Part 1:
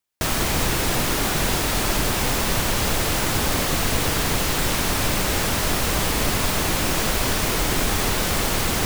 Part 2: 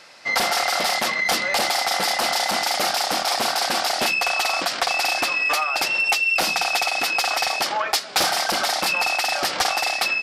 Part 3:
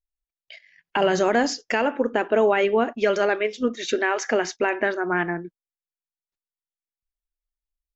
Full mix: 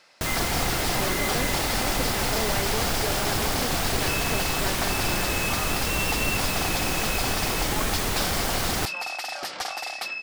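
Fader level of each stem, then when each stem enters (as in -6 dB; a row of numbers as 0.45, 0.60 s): -4.5, -10.0, -13.0 dB; 0.00, 0.00, 0.00 s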